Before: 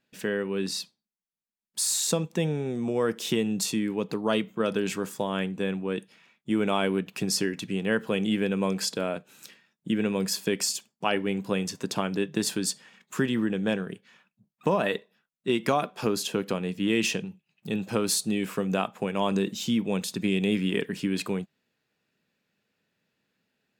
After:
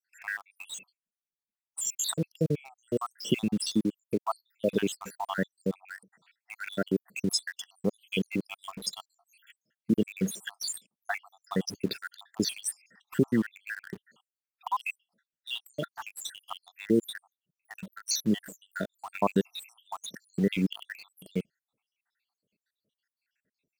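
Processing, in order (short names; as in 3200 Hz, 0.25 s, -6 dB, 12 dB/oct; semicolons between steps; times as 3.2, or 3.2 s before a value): random spectral dropouts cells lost 84%; in parallel at -7.5 dB: bit-crush 7-bit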